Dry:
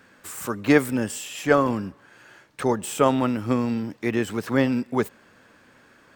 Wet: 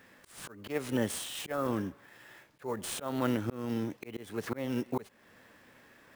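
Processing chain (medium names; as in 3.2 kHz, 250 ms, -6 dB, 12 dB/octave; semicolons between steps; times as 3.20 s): sample-rate reducer 16 kHz, jitter 20%; formant shift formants +2 st; slow attack 345 ms; trim -4 dB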